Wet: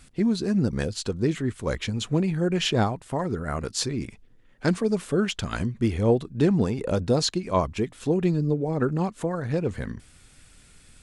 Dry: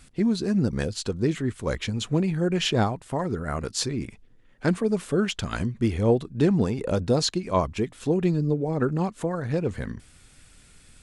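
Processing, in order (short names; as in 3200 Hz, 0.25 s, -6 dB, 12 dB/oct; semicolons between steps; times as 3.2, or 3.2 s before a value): 3.92–4.95 dynamic EQ 5300 Hz, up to +6 dB, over -55 dBFS, Q 1.3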